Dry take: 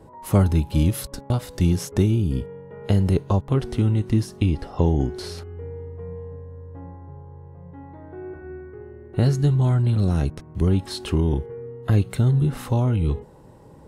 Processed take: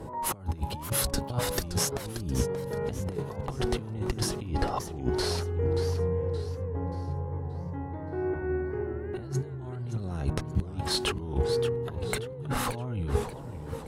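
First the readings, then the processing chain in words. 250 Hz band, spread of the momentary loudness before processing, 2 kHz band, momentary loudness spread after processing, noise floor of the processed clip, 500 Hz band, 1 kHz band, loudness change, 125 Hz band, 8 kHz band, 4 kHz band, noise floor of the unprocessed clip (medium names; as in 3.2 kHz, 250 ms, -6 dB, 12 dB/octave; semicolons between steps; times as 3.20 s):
-10.5 dB, 20 LU, +1.5 dB, 7 LU, -40 dBFS, -1.5 dB, 0.0 dB, -9.0 dB, -11.0 dB, +5.0 dB, +3.0 dB, -46 dBFS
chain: dynamic bell 940 Hz, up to +6 dB, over -41 dBFS, Q 0.85; compressor with a negative ratio -26 dBFS, ratio -0.5; one-sided clip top -15 dBFS; tremolo 0.69 Hz, depth 37%; modulated delay 577 ms, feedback 39%, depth 185 cents, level -10 dB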